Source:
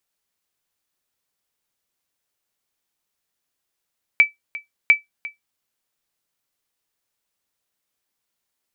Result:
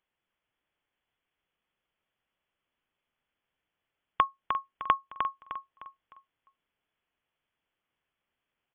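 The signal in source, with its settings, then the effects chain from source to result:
sonar ping 2.31 kHz, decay 0.15 s, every 0.70 s, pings 2, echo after 0.35 s, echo -18.5 dB -4 dBFS
compression 3:1, threshold -24 dBFS; on a send: feedback delay 305 ms, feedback 37%, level -6.5 dB; on the sum: frequency inversion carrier 3.4 kHz

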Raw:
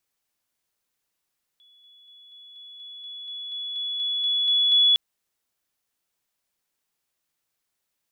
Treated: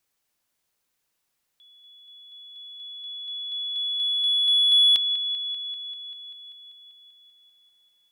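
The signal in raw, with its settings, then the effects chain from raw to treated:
level ladder 3.4 kHz -53.5 dBFS, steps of 3 dB, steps 14, 0.24 s 0.00 s
in parallel at -8.5 dB: saturation -22.5 dBFS; on the sum: feedback echo behind a low-pass 195 ms, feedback 73%, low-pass 3.7 kHz, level -13 dB

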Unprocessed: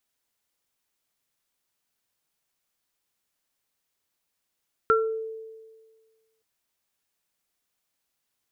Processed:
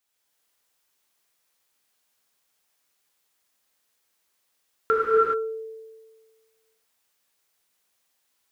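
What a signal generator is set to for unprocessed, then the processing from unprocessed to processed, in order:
sine partials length 1.52 s, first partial 444 Hz, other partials 1.36 kHz, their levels 4 dB, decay 1.61 s, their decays 0.32 s, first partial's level -18.5 dB
bass shelf 260 Hz -8 dB; gated-style reverb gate 450 ms flat, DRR -6.5 dB

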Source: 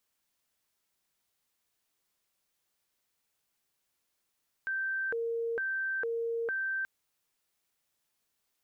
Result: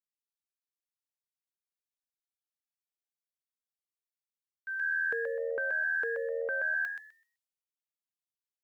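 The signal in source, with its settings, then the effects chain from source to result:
siren hi-lo 462–1560 Hz 1.1 per s sine -30 dBFS 2.18 s
high-pass 350 Hz 6 dB/octave; frequency-shifting echo 127 ms, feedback 30%, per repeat +81 Hz, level -4 dB; three bands expanded up and down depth 100%

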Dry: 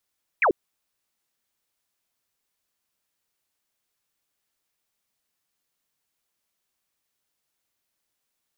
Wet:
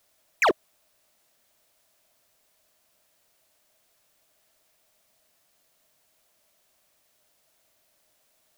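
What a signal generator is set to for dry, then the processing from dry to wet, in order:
laser zap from 2.6 kHz, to 310 Hz, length 0.09 s sine, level -16 dB
in parallel at +1 dB: compressor with a negative ratio -25 dBFS, ratio -0.5; on the sum: peaking EQ 630 Hz +12.5 dB 0.32 oct; hard clipper -17.5 dBFS

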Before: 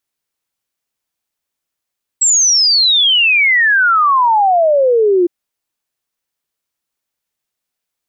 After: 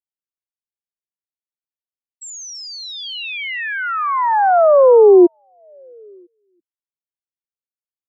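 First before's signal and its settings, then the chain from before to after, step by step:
log sweep 7.8 kHz -> 340 Hz 3.06 s -8 dBFS
tilt shelf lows +6 dB, about 1.1 kHz; on a send: repeats whose band climbs or falls 333 ms, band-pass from 3.4 kHz, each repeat -1.4 oct, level -6.5 dB; on the sum: upward expansion 2.5:1, over -24 dBFS

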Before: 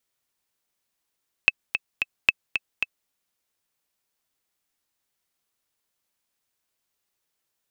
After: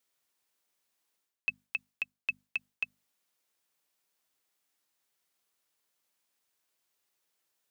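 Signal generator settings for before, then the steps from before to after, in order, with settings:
metronome 223 bpm, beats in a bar 3, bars 2, 2.61 kHz, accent 8 dB -2 dBFS
high-pass 180 Hz 6 dB/octave; hum notches 50/100/150/200/250 Hz; reverse; compression 12:1, threshold -30 dBFS; reverse

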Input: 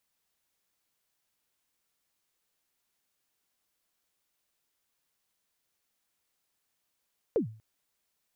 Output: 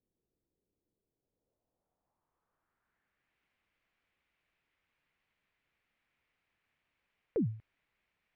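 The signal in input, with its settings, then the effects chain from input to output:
kick drum length 0.24 s, from 520 Hz, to 110 Hz, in 110 ms, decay 0.41 s, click off, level -20 dB
bass shelf 190 Hz +8 dB; peak limiter -26 dBFS; low-pass sweep 390 Hz -> 2.3 kHz, 1.08–3.38 s

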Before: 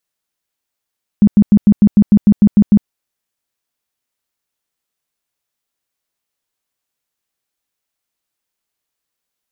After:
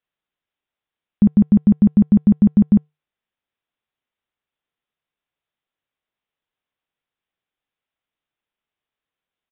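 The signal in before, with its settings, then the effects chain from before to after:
tone bursts 206 Hz, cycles 11, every 0.15 s, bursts 11, -3.5 dBFS
feedback comb 150 Hz, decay 0.23 s, harmonics odd, mix 30%; resampled via 8 kHz

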